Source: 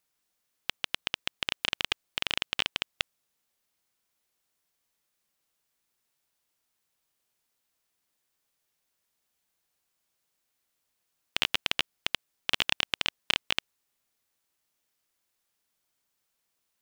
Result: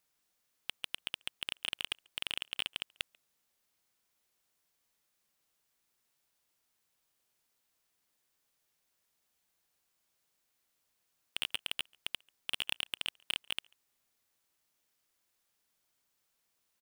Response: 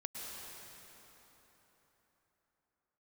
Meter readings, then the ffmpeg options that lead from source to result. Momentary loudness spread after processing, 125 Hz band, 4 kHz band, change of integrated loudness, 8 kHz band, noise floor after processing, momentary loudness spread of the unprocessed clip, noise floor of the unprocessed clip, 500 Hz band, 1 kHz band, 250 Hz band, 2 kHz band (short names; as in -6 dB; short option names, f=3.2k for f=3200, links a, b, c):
6 LU, -12.0 dB, -7.0 dB, -7.5 dB, -4.0 dB, -80 dBFS, 8 LU, -80 dBFS, -12.5 dB, -12.5 dB, -12.5 dB, -9.0 dB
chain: -filter_complex "[0:a]asoftclip=type=tanh:threshold=-20dB,asplit=2[a][b];[b]adelay=140,highpass=300,lowpass=3.4k,asoftclip=type=hard:threshold=-28dB,volume=-24dB[c];[a][c]amix=inputs=2:normalize=0"